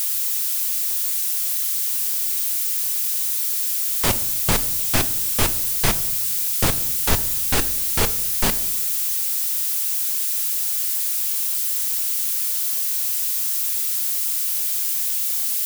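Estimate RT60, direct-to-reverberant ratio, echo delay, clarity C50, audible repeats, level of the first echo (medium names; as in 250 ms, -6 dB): 0.80 s, 11.5 dB, no echo, 16.5 dB, no echo, no echo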